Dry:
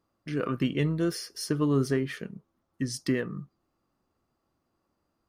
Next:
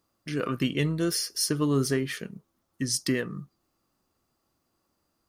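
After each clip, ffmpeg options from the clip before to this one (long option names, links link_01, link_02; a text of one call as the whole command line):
ffmpeg -i in.wav -af "highshelf=frequency=3400:gain=11.5" out.wav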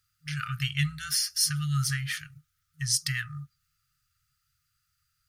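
ffmpeg -i in.wav -af "afftfilt=real='re*(1-between(b*sr/4096,160,1200))':imag='im*(1-between(b*sr/4096,160,1200))':win_size=4096:overlap=0.75,volume=2.5dB" out.wav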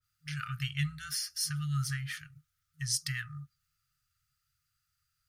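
ffmpeg -i in.wav -af "adynamicequalizer=threshold=0.00501:dfrequency=1900:dqfactor=0.7:tfrequency=1900:tqfactor=0.7:attack=5:release=100:ratio=0.375:range=2:mode=cutabove:tftype=highshelf,volume=-4.5dB" out.wav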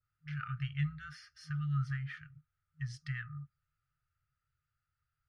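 ffmpeg -i in.wav -af "lowpass=1700,volume=-1dB" out.wav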